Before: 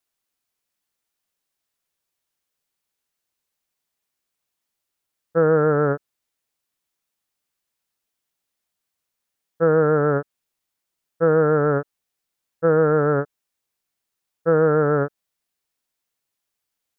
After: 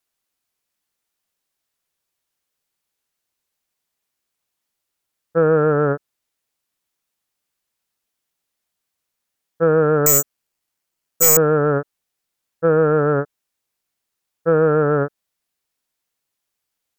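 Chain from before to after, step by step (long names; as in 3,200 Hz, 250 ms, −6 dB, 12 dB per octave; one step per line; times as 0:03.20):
0:10.06–0:11.37: bad sample-rate conversion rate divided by 6×, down filtered, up zero stuff
sine wavefolder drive 9 dB, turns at 8.5 dBFS
level −11 dB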